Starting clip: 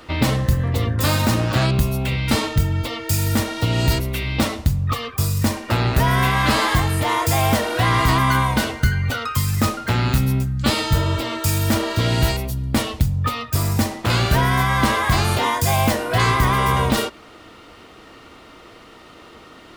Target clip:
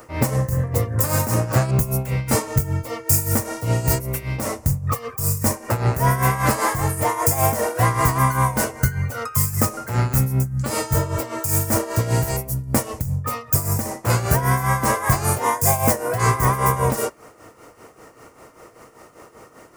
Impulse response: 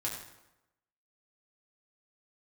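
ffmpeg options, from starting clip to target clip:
-af "tremolo=f=5.1:d=0.7,equalizer=frequency=125:width_type=o:width=1:gain=9,equalizer=frequency=500:width_type=o:width=1:gain=10,equalizer=frequency=1000:width_type=o:width=1:gain=6,equalizer=frequency=2000:width_type=o:width=1:gain=5,equalizer=frequency=4000:width_type=o:width=1:gain=-10,equalizer=frequency=16000:width_type=o:width=1:gain=-6,aexciter=amount=6.4:drive=6.4:freq=4900,volume=-6dB"

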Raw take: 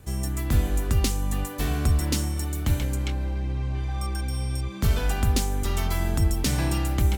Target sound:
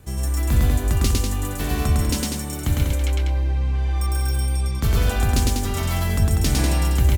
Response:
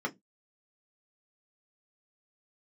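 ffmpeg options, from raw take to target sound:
-filter_complex "[0:a]asettb=1/sr,asplit=3[link_01][link_02][link_03];[link_01]atrim=end=3.964[link_04];[link_02]atrim=start=3.96:end=4.36,asetpts=PTS-STARTPTS,afade=type=in:duration=0.004:curve=qsin,afade=type=out:start_time=0.396:duration=0.004:curve=qsin,highshelf=frequency=11000:gain=11.5[link_05];[link_03]atrim=start=4.356[link_06];[link_04][link_05]acrossfade=duration=0.004:curve1=hsin:curve2=qsin[link_07];[link_07][link_06]acrossfade=duration=0.004:curve1=qsin:curve2=hsin,asplit=2[link_08][link_09];[link_09]aecho=0:1:105|195.3:0.891|0.562[link_10];[link_08][link_10]amix=inputs=2:normalize=0,volume=1dB"

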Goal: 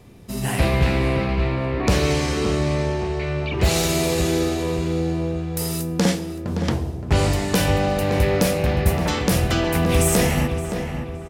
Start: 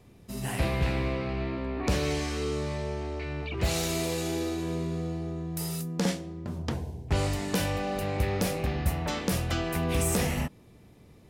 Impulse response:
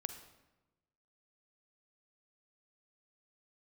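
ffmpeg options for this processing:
-filter_complex "[0:a]asplit=2[link_01][link_02];[link_02]adelay=569,lowpass=frequency=2500:poles=1,volume=-7.5dB,asplit=2[link_03][link_04];[link_04]adelay=569,lowpass=frequency=2500:poles=1,volume=0.47,asplit=2[link_05][link_06];[link_06]adelay=569,lowpass=frequency=2500:poles=1,volume=0.47,asplit=2[link_07][link_08];[link_08]adelay=569,lowpass=frequency=2500:poles=1,volume=0.47,asplit=2[link_09][link_10];[link_10]adelay=569,lowpass=frequency=2500:poles=1,volume=0.47[link_11];[link_01][link_03][link_05][link_07][link_09][link_11]amix=inputs=6:normalize=0,asplit=2[link_12][link_13];[1:a]atrim=start_sample=2205[link_14];[link_13][link_14]afir=irnorm=-1:irlink=0,volume=-0.5dB[link_15];[link_12][link_15]amix=inputs=2:normalize=0,volume=3.5dB"

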